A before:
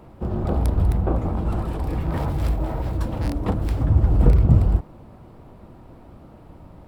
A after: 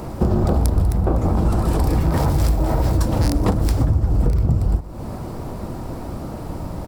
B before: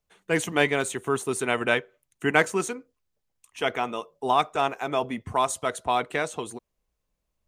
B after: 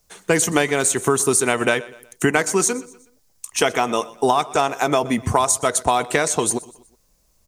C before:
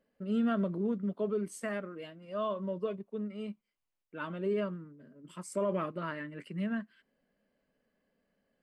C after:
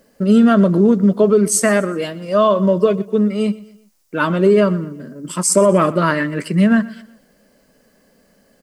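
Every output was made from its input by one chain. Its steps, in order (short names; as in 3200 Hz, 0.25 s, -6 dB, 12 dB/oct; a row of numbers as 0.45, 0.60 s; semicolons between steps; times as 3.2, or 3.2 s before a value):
resonant high shelf 4100 Hz +7.5 dB, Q 1.5; compressor 12:1, threshold -29 dBFS; feedback echo 0.123 s, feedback 42%, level -20 dB; normalise peaks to -1.5 dBFS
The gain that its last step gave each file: +15.5, +15.0, +22.0 dB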